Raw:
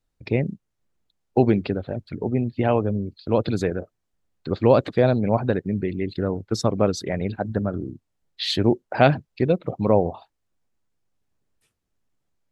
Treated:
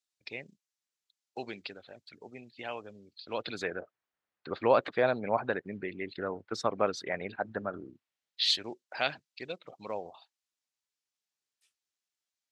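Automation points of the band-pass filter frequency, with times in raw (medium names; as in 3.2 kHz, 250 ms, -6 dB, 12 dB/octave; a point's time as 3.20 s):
band-pass filter, Q 0.85
3.01 s 5.8 kHz
3.80 s 1.6 kHz
7.78 s 1.6 kHz
8.50 s 5.2 kHz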